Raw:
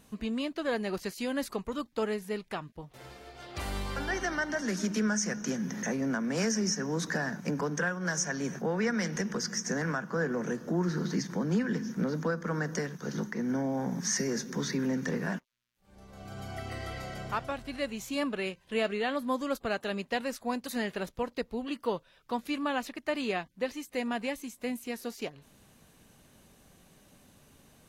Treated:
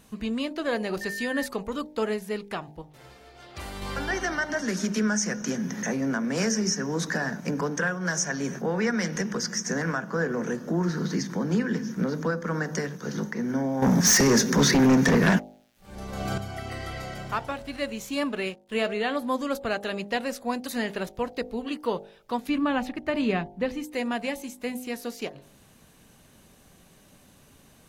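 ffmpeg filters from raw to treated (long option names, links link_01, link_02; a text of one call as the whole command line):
ffmpeg -i in.wav -filter_complex "[0:a]asettb=1/sr,asplit=3[link_01][link_02][link_03];[link_01]atrim=end=1.014[link_04];[link_02]atrim=start=1.01:end=1.46,asetpts=PTS-STARTPTS,afade=type=in:duration=0.004:curve=qsin,afade=type=out:start_time=0.446:duration=0.004:curve=qsin,aeval=exprs='val(0)+0.0158*sin(2*PI*1800*n/s)':channel_layout=same[link_05];[link_03]atrim=start=1.456[link_06];[link_04][link_05]acrossfade=duration=0.004:curve1=hsin:curve2=qsin[link_07];[link_07][link_06]acrossfade=duration=0.004:curve1=qsin:curve2=hsin,asettb=1/sr,asplit=3[link_08][link_09][link_10];[link_08]atrim=end=13.824[link_11];[link_09]atrim=start=13.82:end=16.38,asetpts=PTS-STARTPTS,afade=type=in:duration=0.004:curve=qsin,afade=type=out:start_time=2.556:duration=0.004:curve=qsin,aeval=exprs='0.119*sin(PI/2*2.51*val(0)/0.119)':channel_layout=same[link_12];[link_10]atrim=start=16.376[link_13];[link_11][link_12]acrossfade=duration=0.004:curve1=hsin:curve2=qsin[link_14];[link_14][link_13]acrossfade=duration=0.004:curve1=qsin:curve2=hsin,asettb=1/sr,asplit=3[link_15][link_16][link_17];[link_15]atrim=end=17.154[link_18];[link_16]atrim=start=17.15:end=18.87,asetpts=PTS-STARTPTS,afade=type=in:duration=0.004:curve=qsin,afade=type=out:start_time=1.716:duration=0.004:curve=qsin,aeval=exprs='sgn(val(0))*max(abs(val(0))-0.00112,0)':channel_layout=same[link_19];[link_17]atrim=start=18.866[link_20];[link_18][link_19]acrossfade=duration=0.004:curve1=hsin:curve2=qsin[link_21];[link_21][link_20]acrossfade=duration=0.004:curve1=qsin:curve2=hsin,asettb=1/sr,asplit=3[link_22][link_23][link_24];[link_22]atrim=end=22.494[link_25];[link_23]atrim=start=22.49:end=23.84,asetpts=PTS-STARTPTS,afade=type=in:duration=0.004:curve=qsin,afade=type=out:start_time=1.346:duration=0.004:curve=qsin,bass=frequency=250:gain=12,treble=frequency=4000:gain=-8[link_26];[link_24]atrim=start=23.836[link_27];[link_25][link_26]acrossfade=duration=0.004:curve1=hsin:curve2=qsin[link_28];[link_28][link_27]acrossfade=duration=0.004:curve1=qsin:curve2=hsin,asplit=3[link_29][link_30][link_31];[link_29]atrim=end=2.822[link_32];[link_30]atrim=start=2.818:end=3.822,asetpts=PTS-STARTPTS,volume=-5dB[link_33];[link_31]atrim=start=3.818[link_34];[link_32][link_33]acrossfade=duration=0.004:curve1=hsin:curve2=hsin[link_35];[link_35][link_34]acrossfade=duration=0.004:curve1=hsin:curve2=hsin,bandreject=frequency=50.47:width_type=h:width=4,bandreject=frequency=100.94:width_type=h:width=4,bandreject=frequency=151.41:width_type=h:width=4,bandreject=frequency=201.88:width_type=h:width=4,bandreject=frequency=252.35:width_type=h:width=4,bandreject=frequency=302.82:width_type=h:width=4,bandreject=frequency=353.29:width_type=h:width=4,bandreject=frequency=403.76:width_type=h:width=4,bandreject=frequency=454.23:width_type=h:width=4,bandreject=frequency=504.7:width_type=h:width=4,bandreject=frequency=555.17:width_type=h:width=4,bandreject=frequency=605.64:width_type=h:width=4,bandreject=frequency=656.11:width_type=h:width=4,bandreject=frequency=706.58:width_type=h:width=4,bandreject=frequency=757.05:width_type=h:width=4,bandreject=frequency=807.52:width_type=h:width=4,bandreject=frequency=857.99:width_type=h:width=4,bandreject=frequency=908.46:width_type=h:width=4,volume=4dB" out.wav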